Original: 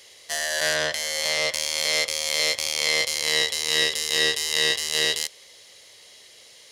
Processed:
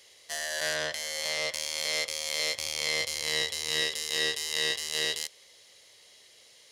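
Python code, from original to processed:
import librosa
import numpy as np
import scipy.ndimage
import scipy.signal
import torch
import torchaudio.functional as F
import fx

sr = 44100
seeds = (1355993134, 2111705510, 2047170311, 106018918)

y = fx.peak_eq(x, sr, hz=83.0, db=6.5, octaves=2.0, at=(2.56, 3.81))
y = y * librosa.db_to_amplitude(-7.0)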